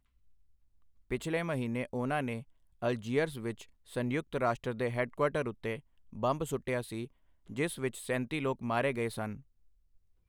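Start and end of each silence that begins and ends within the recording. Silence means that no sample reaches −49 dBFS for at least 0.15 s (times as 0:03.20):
0:02.43–0:02.82
0:03.64–0:03.88
0:05.80–0:06.13
0:07.07–0:07.49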